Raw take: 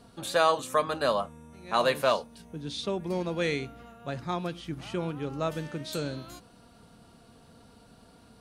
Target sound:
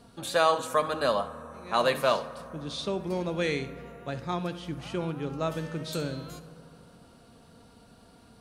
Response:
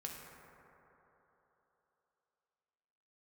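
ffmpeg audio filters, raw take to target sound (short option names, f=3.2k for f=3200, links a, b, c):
-filter_complex "[0:a]asplit=2[a][b];[1:a]atrim=start_sample=2205,adelay=67[c];[b][c]afir=irnorm=-1:irlink=0,volume=-11dB[d];[a][d]amix=inputs=2:normalize=0"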